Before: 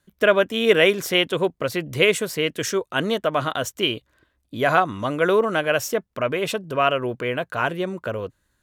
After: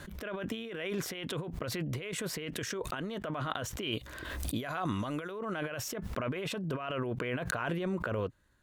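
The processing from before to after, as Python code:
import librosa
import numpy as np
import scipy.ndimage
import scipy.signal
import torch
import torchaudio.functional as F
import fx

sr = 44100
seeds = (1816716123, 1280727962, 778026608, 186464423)

y = fx.dynamic_eq(x, sr, hz=530.0, q=1.0, threshold_db=-32.0, ratio=4.0, max_db=-4)
y = fx.over_compress(y, sr, threshold_db=-31.0, ratio=-1.0)
y = fx.high_shelf(y, sr, hz=4200.0, db=fx.steps((0.0, -10.0), (3.91, 2.0), (5.3, -8.5)))
y = fx.pre_swell(y, sr, db_per_s=33.0)
y = y * librosa.db_to_amplitude(-6.5)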